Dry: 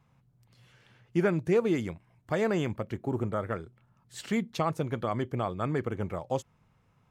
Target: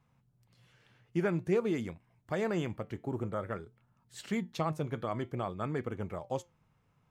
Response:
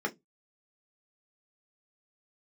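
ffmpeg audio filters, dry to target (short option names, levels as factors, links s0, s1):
-af "flanger=delay=3.9:depth=3.1:regen=85:speed=0.51:shape=triangular"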